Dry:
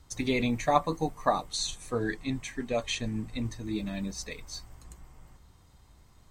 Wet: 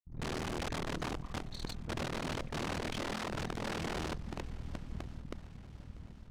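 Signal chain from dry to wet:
low-pass that shuts in the quiet parts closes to 540 Hz, open at −23.5 dBFS
granular cloud
low shelf with overshoot 320 Hz +12 dB, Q 3
asymmetric clip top −38.5 dBFS, bottom −20 dBFS
hum removal 105.9 Hz, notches 7
amplitude modulation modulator 40 Hz, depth 95%
wrap-around overflow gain 32.5 dB
high-frequency loss of the air 60 metres
feedback echo with a long and a short gap by turns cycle 1,068 ms, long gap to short 1.5 to 1, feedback 48%, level −19.5 dB
level +1.5 dB

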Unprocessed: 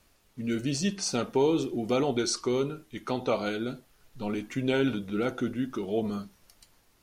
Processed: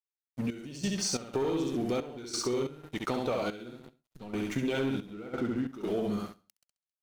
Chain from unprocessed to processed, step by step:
0:05.06–0:05.67: low-pass filter 3,600 Hz → 2,000 Hz
dead-zone distortion −51 dBFS
repeating echo 67 ms, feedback 34%, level −3 dB
leveller curve on the samples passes 2
downward compressor, threshold −25 dBFS, peak gain reduction 10.5 dB
gate pattern "xxx..xx.x" 90 BPM −12 dB
level −3 dB

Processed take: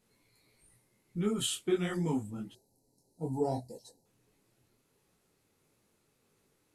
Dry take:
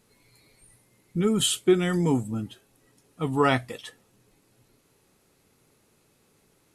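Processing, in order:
gain on a spectral selection 0:02.52–0:04.06, 980–3,900 Hz −30 dB
micro pitch shift up and down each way 54 cents
level −5 dB

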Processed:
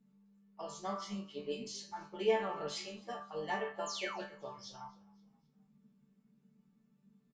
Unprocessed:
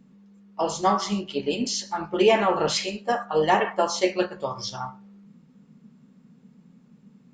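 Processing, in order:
sound drawn into the spectrogram fall, 0:03.86–0:04.20, 580–7,500 Hz −27 dBFS
resonators tuned to a chord D3 sus4, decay 0.24 s
echo with shifted repeats 261 ms, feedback 43%, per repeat −38 Hz, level −24 dB
level −3 dB

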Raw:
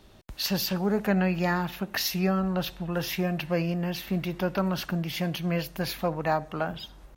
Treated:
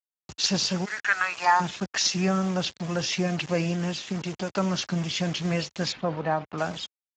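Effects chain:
high-shelf EQ 3,700 Hz +12 dB
0:03.89–0:04.55: downward compressor 8 to 1, threshold −27 dBFS, peak gain reduction 6.5 dB
asymmetric clip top −17 dBFS
0:00.84–0:01.59: high-pass with resonance 2,100 Hz → 810 Hz, resonance Q 4.9
bit-depth reduction 6 bits, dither none
0:05.92–0:06.58: high-frequency loss of the air 310 metres
Speex 13 kbit/s 16,000 Hz

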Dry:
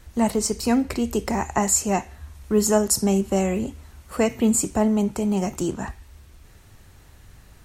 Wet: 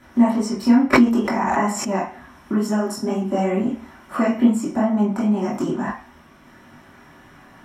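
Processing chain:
parametric band 430 Hz −7.5 dB 0.69 octaves
downward compressor 2.5 to 1, threshold −31 dBFS, peak gain reduction 11 dB
chorus effect 2.2 Hz, delay 19 ms, depth 6 ms
convolution reverb RT60 0.35 s, pre-delay 3 ms, DRR −6 dB
0:00.93–0:01.89: background raised ahead of every attack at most 23 dB per second
level −3 dB

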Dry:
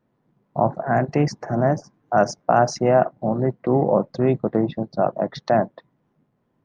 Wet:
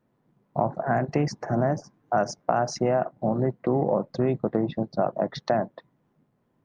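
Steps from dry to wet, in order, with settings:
downward compressor, threshold −18 dBFS, peak gain reduction 7.5 dB
level −1 dB

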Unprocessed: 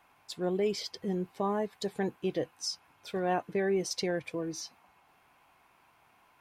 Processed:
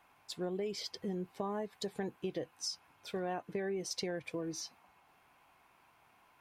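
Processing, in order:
downward compressor, threshold −32 dBFS, peak gain reduction 7.5 dB
level −2 dB

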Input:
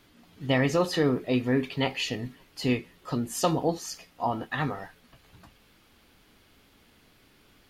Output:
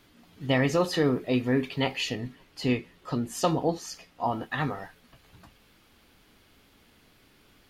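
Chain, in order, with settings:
0:02.13–0:04.25: high-shelf EQ 8,100 Hz −7 dB

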